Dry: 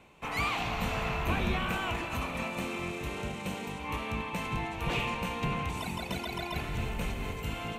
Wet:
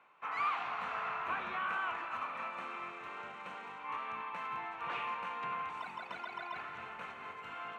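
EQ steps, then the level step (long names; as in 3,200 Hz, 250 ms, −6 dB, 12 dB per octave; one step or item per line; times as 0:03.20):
high-pass filter 80 Hz
low-pass with resonance 1,300 Hz, resonance Q 2.6
first difference
+9.0 dB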